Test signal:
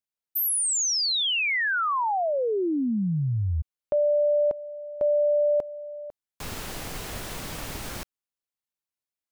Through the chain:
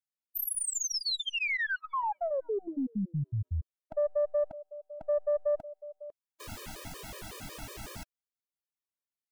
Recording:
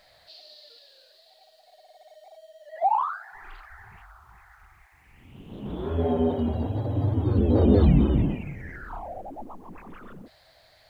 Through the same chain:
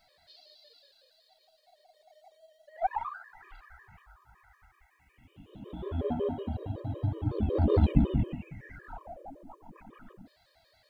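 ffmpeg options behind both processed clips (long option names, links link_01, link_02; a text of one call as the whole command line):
ffmpeg -i in.wav -af "aeval=exprs='0.473*(cos(1*acos(clip(val(0)/0.473,-1,1)))-cos(1*PI/2))+0.0668*(cos(3*acos(clip(val(0)/0.473,-1,1)))-cos(3*PI/2))+0.0422*(cos(4*acos(clip(val(0)/0.473,-1,1)))-cos(4*PI/2))+0.0119*(cos(6*acos(clip(val(0)/0.473,-1,1)))-cos(6*PI/2))':channel_layout=same,afftfilt=real='re*gt(sin(2*PI*5.4*pts/sr)*(1-2*mod(floor(b*sr/1024/320),2)),0)':imag='im*gt(sin(2*PI*5.4*pts/sr)*(1-2*mod(floor(b*sr/1024/320),2)),0)':win_size=1024:overlap=0.75" out.wav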